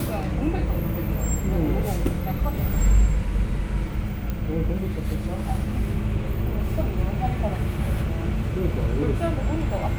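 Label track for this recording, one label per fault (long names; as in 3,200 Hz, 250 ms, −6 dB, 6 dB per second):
4.300000	4.300000	click −16 dBFS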